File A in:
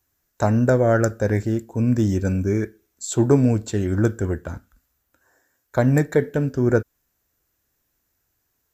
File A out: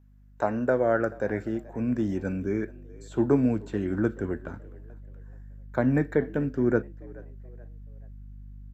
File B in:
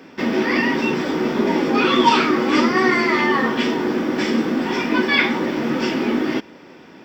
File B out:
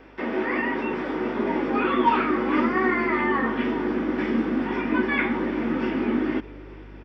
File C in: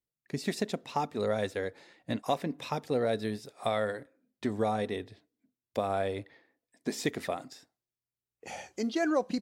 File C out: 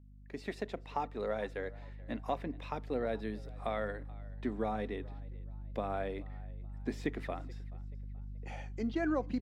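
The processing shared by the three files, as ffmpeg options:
-filter_complex "[0:a]acrossover=split=250 3200:gain=0.0708 1 0.178[a][b][c];[a][b][c]amix=inputs=3:normalize=0,aeval=exprs='val(0)+0.00251*(sin(2*PI*50*n/s)+sin(2*PI*2*50*n/s)/2+sin(2*PI*3*50*n/s)/3+sin(2*PI*4*50*n/s)/4+sin(2*PI*5*50*n/s)/5)':c=same,asubboost=boost=5:cutoff=220,acrossover=split=2600[d][e];[e]acompressor=threshold=-46dB:ratio=4:attack=1:release=60[f];[d][f]amix=inputs=2:normalize=0,asplit=4[g][h][i][j];[h]adelay=430,afreqshift=61,volume=-22.5dB[k];[i]adelay=860,afreqshift=122,volume=-31.1dB[l];[j]adelay=1290,afreqshift=183,volume=-39.8dB[m];[g][k][l][m]amix=inputs=4:normalize=0,volume=-3.5dB"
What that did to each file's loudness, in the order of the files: -6.5, -5.5, -6.0 LU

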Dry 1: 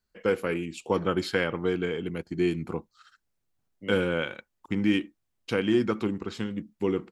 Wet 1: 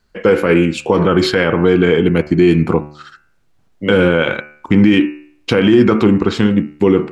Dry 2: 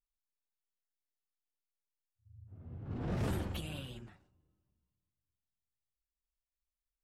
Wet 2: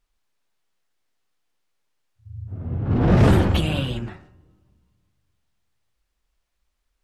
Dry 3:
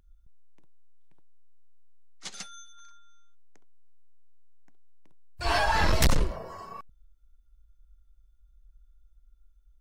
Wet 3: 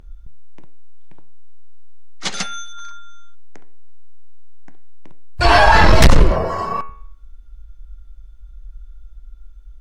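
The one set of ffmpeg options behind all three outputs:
-af "aemphasis=mode=reproduction:type=50kf,bandreject=f=74.31:t=h:w=4,bandreject=f=148.62:t=h:w=4,bandreject=f=222.93:t=h:w=4,bandreject=f=297.24:t=h:w=4,bandreject=f=371.55:t=h:w=4,bandreject=f=445.86:t=h:w=4,bandreject=f=520.17:t=h:w=4,bandreject=f=594.48:t=h:w=4,bandreject=f=668.79:t=h:w=4,bandreject=f=743.1:t=h:w=4,bandreject=f=817.41:t=h:w=4,bandreject=f=891.72:t=h:w=4,bandreject=f=966.03:t=h:w=4,bandreject=f=1.04034k:t=h:w=4,bandreject=f=1.11465k:t=h:w=4,bandreject=f=1.18896k:t=h:w=4,bandreject=f=1.26327k:t=h:w=4,bandreject=f=1.33758k:t=h:w=4,bandreject=f=1.41189k:t=h:w=4,bandreject=f=1.4862k:t=h:w=4,bandreject=f=1.56051k:t=h:w=4,bandreject=f=1.63482k:t=h:w=4,bandreject=f=1.70913k:t=h:w=4,bandreject=f=1.78344k:t=h:w=4,bandreject=f=1.85775k:t=h:w=4,bandreject=f=1.93206k:t=h:w=4,bandreject=f=2.00637k:t=h:w=4,bandreject=f=2.08068k:t=h:w=4,bandreject=f=2.15499k:t=h:w=4,bandreject=f=2.2293k:t=h:w=4,bandreject=f=2.30361k:t=h:w=4,bandreject=f=2.37792k:t=h:w=4,bandreject=f=2.45223k:t=h:w=4,bandreject=f=2.52654k:t=h:w=4,bandreject=f=2.60085k:t=h:w=4,bandreject=f=2.67516k:t=h:w=4,bandreject=f=2.74947k:t=h:w=4,bandreject=f=2.82378k:t=h:w=4,bandreject=f=2.89809k:t=h:w=4,alimiter=level_in=21.5dB:limit=-1dB:release=50:level=0:latency=1,volume=-1dB"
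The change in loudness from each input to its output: +15.0, +19.5, +13.0 LU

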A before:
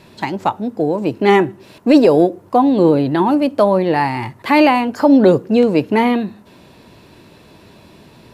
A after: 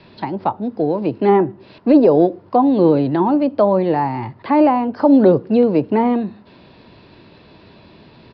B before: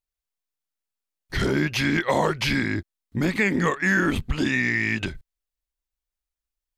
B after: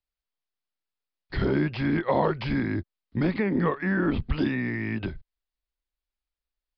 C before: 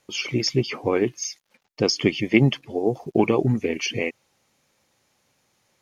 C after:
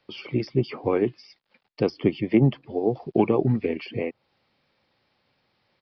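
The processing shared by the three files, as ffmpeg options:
-filter_complex "[0:a]acrossover=split=130|900|1100[a][b][c][d];[d]acompressor=threshold=-38dB:ratio=6[e];[a][b][c][e]amix=inputs=4:normalize=0,aresample=11025,aresample=44100,volume=-1dB"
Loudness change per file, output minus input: -1.0, -3.5, -2.0 LU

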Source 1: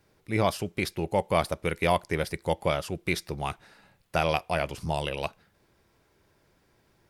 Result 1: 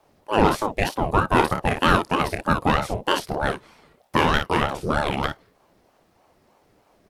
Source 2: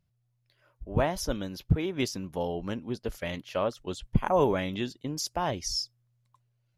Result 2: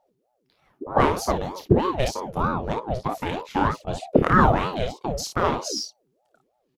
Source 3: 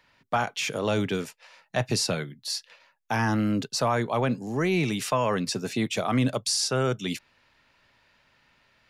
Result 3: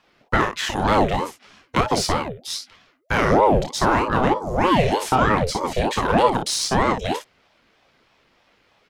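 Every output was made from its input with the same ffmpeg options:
-filter_complex "[0:a]asplit=2[a][b];[b]adynamicsmooth=sensitivity=3.5:basefreq=890,volume=-3dB[c];[a][c]amix=inputs=2:normalize=0,aecho=1:1:29|56:0.473|0.422,aeval=exprs='val(0)*sin(2*PI*500*n/s+500*0.5/3.2*sin(2*PI*3.2*n/s))':c=same,volume=4dB"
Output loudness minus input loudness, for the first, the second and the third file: +6.5, +7.0, +6.5 LU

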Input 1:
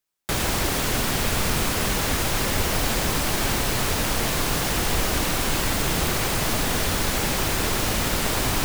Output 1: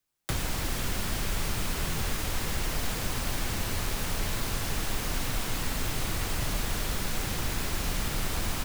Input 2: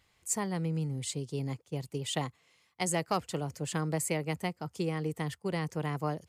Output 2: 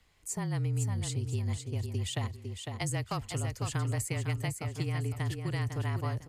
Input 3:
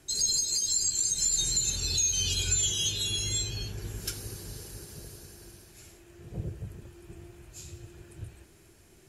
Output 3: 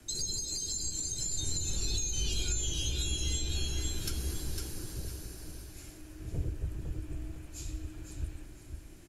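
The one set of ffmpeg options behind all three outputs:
-filter_complex "[0:a]lowshelf=f=210:g=8.5,aecho=1:1:503|1006|1509:0.376|0.101|0.0274,afreqshift=-36,acrossover=split=180|950[a][b][c];[a]acompressor=threshold=-30dB:ratio=4[d];[b]acompressor=threshold=-42dB:ratio=4[e];[c]acompressor=threshold=-35dB:ratio=4[f];[d][e][f]amix=inputs=3:normalize=0"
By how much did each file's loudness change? -8.5, 0.0, -8.5 LU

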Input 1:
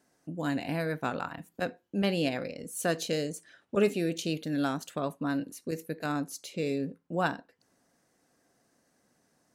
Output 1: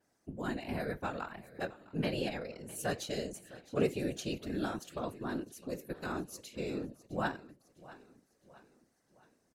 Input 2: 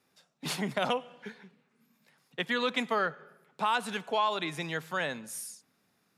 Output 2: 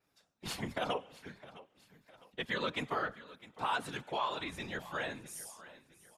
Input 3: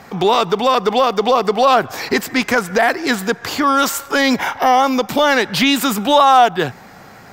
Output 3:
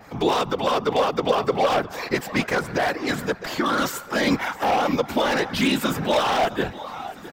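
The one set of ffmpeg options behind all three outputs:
-filter_complex "[0:a]aecho=1:1:658|1316|1974|2632:0.126|0.0567|0.0255|0.0115,afftfilt=real='hypot(re,im)*cos(2*PI*random(0))':imag='hypot(re,im)*sin(2*PI*random(1))':win_size=512:overlap=0.75,acrossover=split=650|5000[a][b][c];[b]aeval=exprs='0.106*(abs(mod(val(0)/0.106+3,4)-2)-1)':c=same[d];[a][d][c]amix=inputs=3:normalize=0,adynamicequalizer=threshold=0.01:dfrequency=3900:dqfactor=0.7:tfrequency=3900:tqfactor=0.7:attack=5:release=100:ratio=0.375:range=2.5:mode=cutabove:tftype=highshelf"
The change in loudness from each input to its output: -6.0, -6.0, -7.5 LU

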